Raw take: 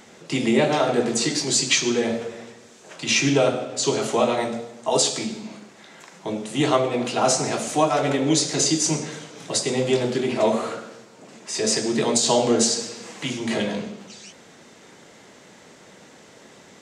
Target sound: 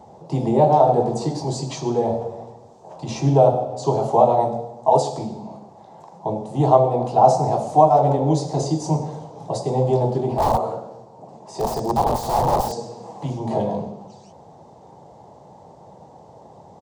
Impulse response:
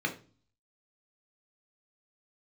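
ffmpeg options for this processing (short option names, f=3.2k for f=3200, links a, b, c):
-filter_complex "[0:a]highpass=f=50:w=0.5412,highpass=f=50:w=1.3066,lowshelf=f=160:g=7,asettb=1/sr,asplit=3[a][b][c];[a]atrim=end=10.344[d];[b]atrim=start=10.34:end=12.72,asetpts=PTS-STARTPTS,afade=t=in:d=0.004:c=qsin,afade=t=out:st=2.376:d=0.004:c=qsin,aeval=exprs='(mod(5.62*val(0)+1,2)-1)/5.62':c=same[e];[c]atrim=start=12.716[f];[d][e]acrossfade=d=0.004:c1=hsin:c2=qsin[g];[g][f]acrossfade=d=0.004:c1=qsin:c2=hsin,firequalizer=gain_entry='entry(140,0);entry(230,-10);entry(840,7);entry(1400,-21);entry(2200,-26);entry(4600,-17);entry(6700,-20)':delay=0.05:min_phase=1,volume=5dB"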